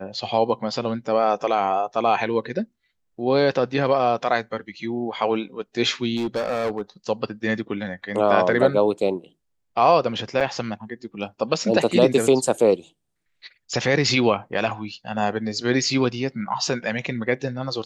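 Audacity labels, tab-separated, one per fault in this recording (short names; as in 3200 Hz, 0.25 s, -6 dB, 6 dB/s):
6.160000	6.810000	clipped -20.5 dBFS
10.400000	10.410000	gap 6.5 ms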